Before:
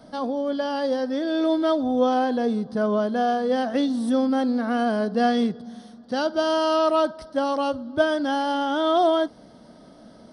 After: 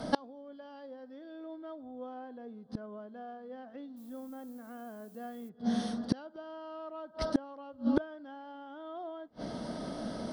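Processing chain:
treble cut that deepens with the level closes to 2,300 Hz, closed at −20 dBFS
0:03.96–0:05.48: background noise violet −40 dBFS
gate with flip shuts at −23 dBFS, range −32 dB
level +9 dB

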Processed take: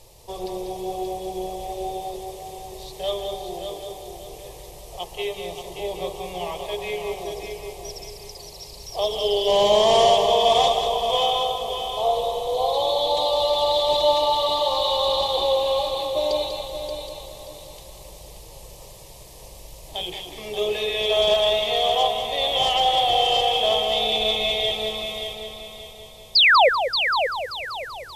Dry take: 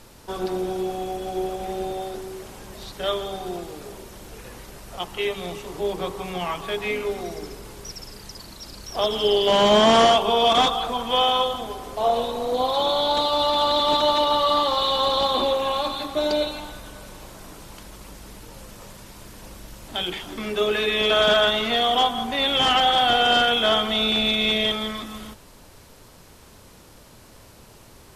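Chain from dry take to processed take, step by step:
phaser with its sweep stopped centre 600 Hz, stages 4
sound drawn into the spectrogram fall, 0:26.35–0:26.69, 460–5,200 Hz −14 dBFS
echo machine with several playback heads 193 ms, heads first and third, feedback 50%, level −8 dB

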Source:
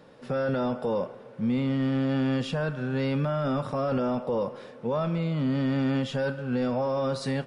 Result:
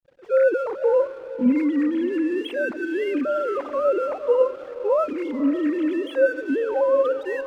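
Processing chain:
three sine waves on the formant tracks
feedback delay with all-pass diffusion 509 ms, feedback 46%, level −14 dB
in parallel at −1 dB: fake sidechain pumping 158 BPM, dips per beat 2, −9 dB, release 72 ms
on the sum: slack as between gear wheels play −42.5 dBFS

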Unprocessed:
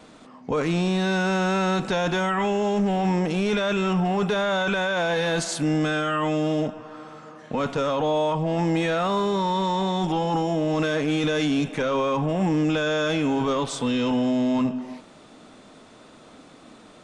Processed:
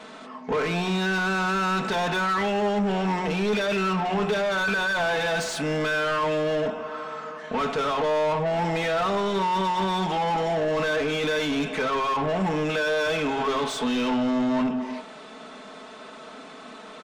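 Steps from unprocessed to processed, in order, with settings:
comb filter 4.6 ms, depth 64%
hum removal 45.08 Hz, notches 24
mid-hump overdrive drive 19 dB, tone 2,500 Hz, clips at −15 dBFS
level −3.5 dB

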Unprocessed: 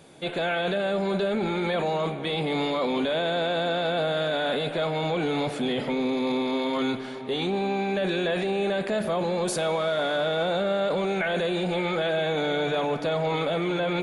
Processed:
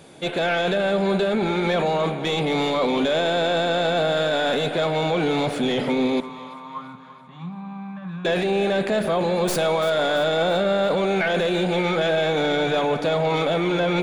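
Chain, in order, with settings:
stylus tracing distortion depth 0.049 ms
0:06.20–0:08.25: pair of resonant band-passes 430 Hz, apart 2.7 octaves
echo with a time of its own for lows and highs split 510 Hz, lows 91 ms, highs 337 ms, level −15.5 dB
level +4.5 dB

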